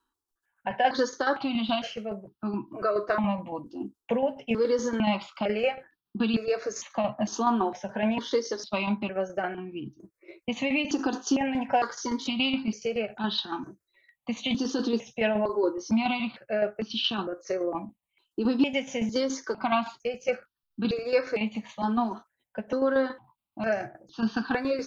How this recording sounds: tremolo saw down 7.1 Hz, depth 55%; notches that jump at a steady rate 2.2 Hz 590–2100 Hz

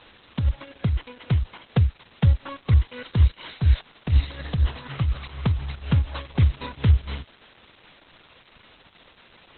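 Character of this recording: tremolo triangle 4.1 Hz, depth 75%; a quantiser's noise floor 8-bit, dither triangular; Opus

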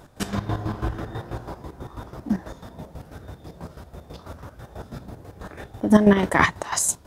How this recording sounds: chopped level 6.1 Hz, depth 65%, duty 40%

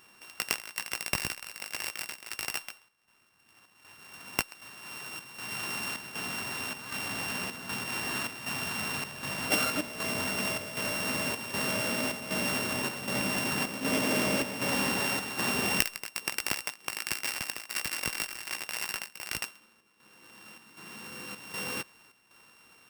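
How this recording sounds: a buzz of ramps at a fixed pitch in blocks of 16 samples; chopped level 1.3 Hz, depth 60%, duty 75%

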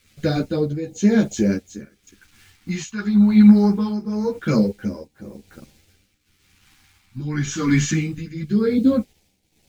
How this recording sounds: a quantiser's noise floor 10-bit, dither none; phasing stages 2, 0.24 Hz, lowest notch 490–1200 Hz; tremolo triangle 0.93 Hz, depth 85%; a shimmering, thickened sound

